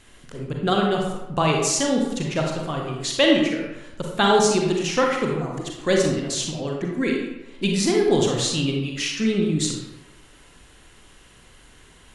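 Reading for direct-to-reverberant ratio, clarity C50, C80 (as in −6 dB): −0.5 dB, 1.5 dB, 4.5 dB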